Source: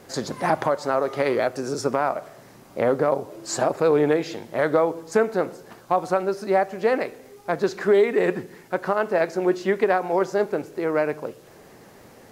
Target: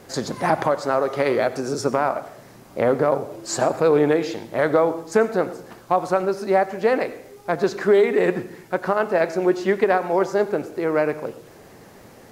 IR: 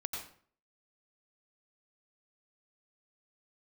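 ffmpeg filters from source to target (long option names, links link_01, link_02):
-filter_complex "[0:a]asplit=2[link_01][link_02];[1:a]atrim=start_sample=2205,lowshelf=frequency=160:gain=10[link_03];[link_02][link_03]afir=irnorm=-1:irlink=0,volume=-11.5dB[link_04];[link_01][link_04]amix=inputs=2:normalize=0"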